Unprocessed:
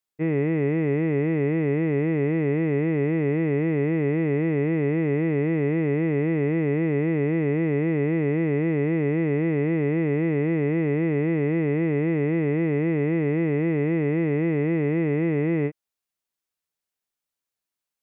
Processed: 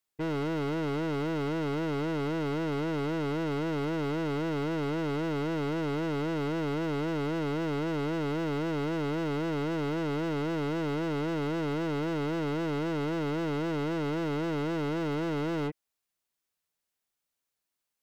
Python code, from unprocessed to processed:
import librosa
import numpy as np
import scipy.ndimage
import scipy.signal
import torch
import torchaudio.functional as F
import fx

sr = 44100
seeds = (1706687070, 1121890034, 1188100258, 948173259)

y = np.clip(x, -10.0 ** (-31.5 / 20.0), 10.0 ** (-31.5 / 20.0))
y = y * 10.0 ** (1.5 / 20.0)